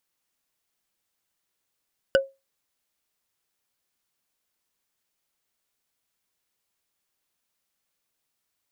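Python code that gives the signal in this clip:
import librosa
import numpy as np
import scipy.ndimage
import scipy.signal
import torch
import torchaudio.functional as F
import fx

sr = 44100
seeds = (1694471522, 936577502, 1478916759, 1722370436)

y = fx.strike_wood(sr, length_s=0.45, level_db=-12.0, body='bar', hz=542.0, decay_s=0.23, tilt_db=4, modes=5)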